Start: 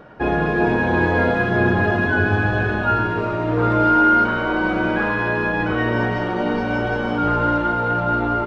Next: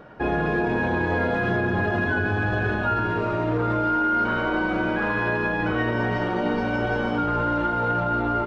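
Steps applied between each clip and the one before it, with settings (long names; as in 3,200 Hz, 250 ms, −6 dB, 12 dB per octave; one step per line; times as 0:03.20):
brickwall limiter −13 dBFS, peak gain reduction 7 dB
level −2 dB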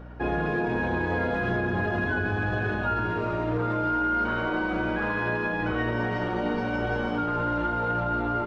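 mains hum 60 Hz, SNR 16 dB
level −3.5 dB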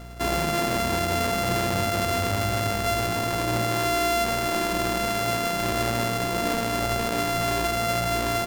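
samples sorted by size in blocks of 64 samples
level +2 dB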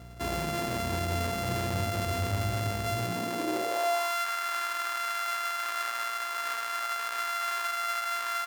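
high-pass filter sweep 80 Hz → 1,300 Hz, 0:02.81–0:04.21
level −7.5 dB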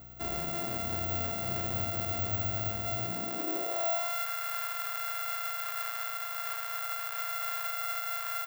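bad sample-rate conversion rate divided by 2×, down filtered, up zero stuff
level −6 dB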